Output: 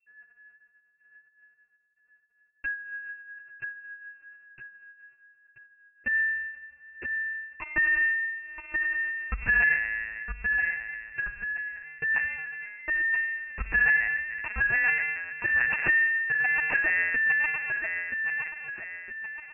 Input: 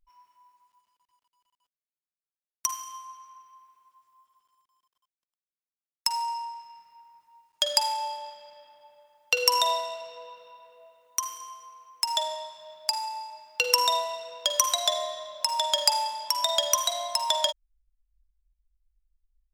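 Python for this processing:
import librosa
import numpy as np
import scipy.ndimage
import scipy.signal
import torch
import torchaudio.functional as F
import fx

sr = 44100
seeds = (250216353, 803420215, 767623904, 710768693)

y = fx.tracing_dist(x, sr, depth_ms=0.21)
y = fx.low_shelf_res(y, sr, hz=590.0, db=-9.5, q=3.0)
y = fx.quant_dither(y, sr, seeds[0], bits=8, dither='triangular', at=(8.35, 9.54), fade=0.02)
y = fx.air_absorb(y, sr, metres=66.0)
y = fx.echo_feedback(y, sr, ms=972, feedback_pct=40, wet_db=-5.0)
y = fx.rev_freeverb(y, sr, rt60_s=1.6, hf_ratio=0.6, predelay_ms=90, drr_db=14.0)
y = fx.lpc_vocoder(y, sr, seeds[1], excitation='pitch_kept', order=10)
y = fx.freq_invert(y, sr, carrier_hz=2700)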